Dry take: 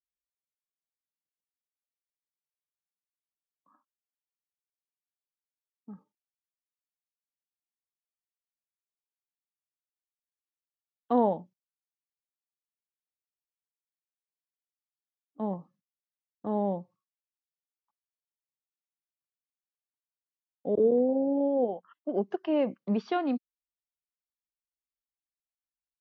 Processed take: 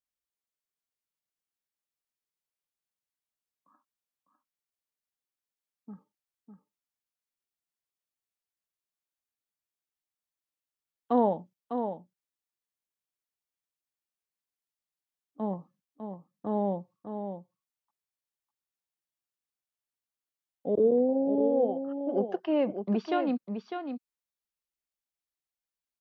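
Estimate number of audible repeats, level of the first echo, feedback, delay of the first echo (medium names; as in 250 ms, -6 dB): 1, -7.5 dB, no regular repeats, 602 ms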